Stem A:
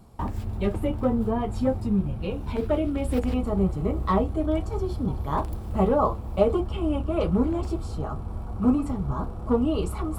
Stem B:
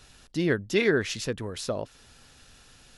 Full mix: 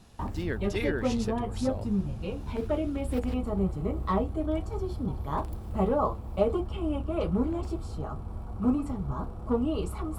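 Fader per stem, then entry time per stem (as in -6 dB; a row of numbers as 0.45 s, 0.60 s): -4.5 dB, -8.5 dB; 0.00 s, 0.00 s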